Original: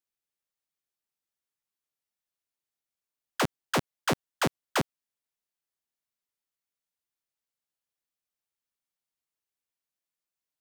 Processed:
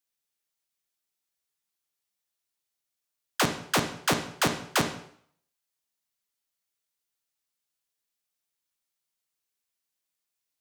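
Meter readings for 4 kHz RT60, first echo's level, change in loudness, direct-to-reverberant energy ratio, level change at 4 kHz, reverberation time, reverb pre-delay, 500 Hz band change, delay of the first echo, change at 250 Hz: 0.55 s, none, +3.0 dB, 5.0 dB, +5.5 dB, 0.60 s, 7 ms, +1.0 dB, none, +1.5 dB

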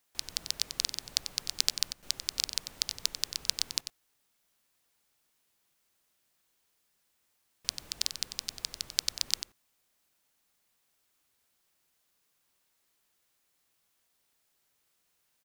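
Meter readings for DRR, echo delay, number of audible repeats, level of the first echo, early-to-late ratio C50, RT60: none, 93 ms, 1, -10.0 dB, none, none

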